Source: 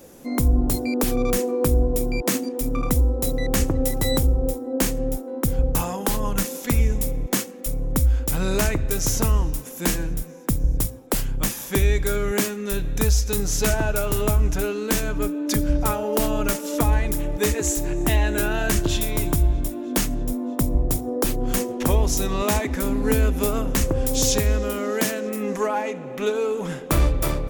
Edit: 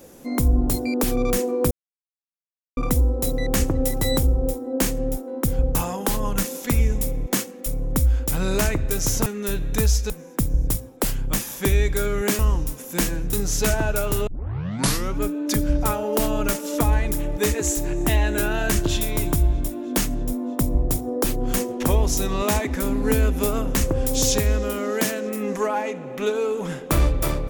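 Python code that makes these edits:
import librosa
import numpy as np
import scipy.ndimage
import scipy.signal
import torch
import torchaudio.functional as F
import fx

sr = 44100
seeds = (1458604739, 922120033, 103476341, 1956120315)

y = fx.edit(x, sr, fx.silence(start_s=1.71, length_s=1.06),
    fx.swap(start_s=9.26, length_s=0.94, other_s=12.49, other_length_s=0.84),
    fx.tape_start(start_s=14.27, length_s=0.93), tone=tone)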